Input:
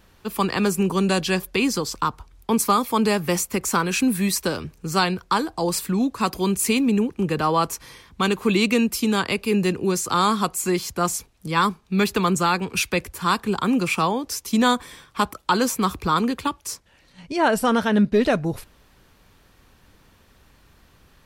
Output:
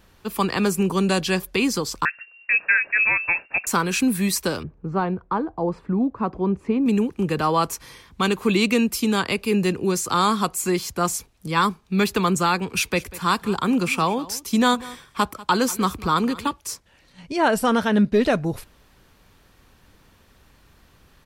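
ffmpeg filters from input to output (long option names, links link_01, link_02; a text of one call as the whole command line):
ffmpeg -i in.wav -filter_complex "[0:a]asettb=1/sr,asplit=3[link_01][link_02][link_03];[link_01]atrim=end=2.054[link_04];[link_02]atrim=start=2.05:end=3.67,asetpts=PTS-STARTPTS,afade=type=in:duration=0.004:curve=qsin,afade=type=out:start_time=1.616:duration=0.004:curve=qsin,lowpass=frequency=2400:width_type=q:width=0.5098,lowpass=frequency=2400:width_type=q:width=0.6013,lowpass=frequency=2400:width_type=q:width=0.9,lowpass=frequency=2400:width_type=q:width=2.563,afreqshift=-2800[link_05];[link_03]atrim=start=3.666[link_06];[link_04][link_05]acrossfade=duration=0.004:curve1=hsin:curve2=qsin[link_07];[link_07][link_06]acrossfade=duration=0.004:curve1=qsin:curve2=hsin,asettb=1/sr,asplit=3[link_08][link_09][link_10];[link_08]atrim=end=4.634[link_11];[link_09]atrim=start=4.63:end=6.86,asetpts=PTS-STARTPTS,afade=type=in:duration=0.004:curve=qsin,afade=type=out:start_time=2.226:duration=0.004:curve=qsin,lowpass=1000[link_12];[link_10]atrim=start=6.856[link_13];[link_11][link_12]acrossfade=duration=0.004:curve1=hsin:curve2=qsin[link_14];[link_14][link_13]acrossfade=duration=0.004:curve1=qsin:curve2=hsin,asplit=3[link_15][link_16][link_17];[link_15]afade=type=out:start_time=12.84:duration=0.02[link_18];[link_16]aecho=1:1:193:0.112,afade=type=in:start_time=12.84:duration=0.02,afade=type=out:start_time=16.53:duration=0.02[link_19];[link_17]afade=type=in:start_time=16.53:duration=0.02[link_20];[link_18][link_19][link_20]amix=inputs=3:normalize=0" out.wav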